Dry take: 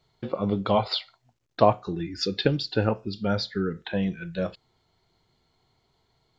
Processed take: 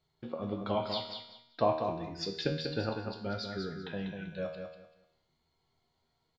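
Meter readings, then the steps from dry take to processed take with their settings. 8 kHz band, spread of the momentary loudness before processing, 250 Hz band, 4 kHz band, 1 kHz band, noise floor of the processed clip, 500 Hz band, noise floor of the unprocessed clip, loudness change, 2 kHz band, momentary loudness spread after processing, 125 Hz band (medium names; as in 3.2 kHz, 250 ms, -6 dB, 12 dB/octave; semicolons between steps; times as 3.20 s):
no reading, 10 LU, -9.5 dB, -8.0 dB, -8.0 dB, -78 dBFS, -8.0 dB, -72 dBFS, -9.0 dB, -8.0 dB, 12 LU, -10.0 dB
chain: feedback comb 79 Hz, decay 0.68 s, harmonics all, mix 80%; on a send: feedback delay 194 ms, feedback 24%, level -6 dB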